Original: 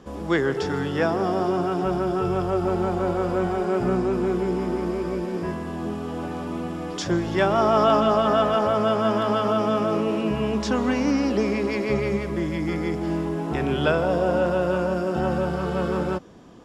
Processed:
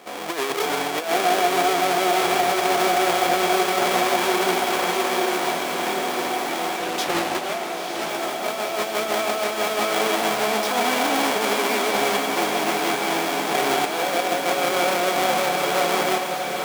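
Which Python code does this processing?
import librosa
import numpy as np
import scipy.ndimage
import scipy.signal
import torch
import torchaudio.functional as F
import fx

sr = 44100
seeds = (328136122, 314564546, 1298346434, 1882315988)

p1 = fx.halfwave_hold(x, sr)
p2 = scipy.signal.sosfilt(scipy.signal.butter(2, 470.0, 'highpass', fs=sr, output='sos'), p1)
p3 = fx.over_compress(p2, sr, threshold_db=-23.0, ratio=-0.5)
p4 = fx.small_body(p3, sr, hz=(720.0, 2300.0, 3300.0), ring_ms=45, db=10)
p5 = p4 + fx.echo_diffused(p4, sr, ms=968, feedback_pct=58, wet_db=-5, dry=0)
p6 = fx.doppler_dist(p5, sr, depth_ms=0.25, at=(6.78, 8.09))
y = p6 * librosa.db_to_amplitude(-1.0)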